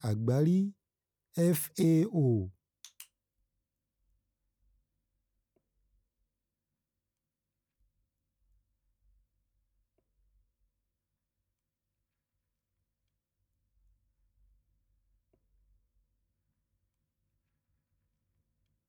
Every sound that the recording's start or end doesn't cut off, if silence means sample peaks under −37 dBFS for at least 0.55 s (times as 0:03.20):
0:01.37–0:03.02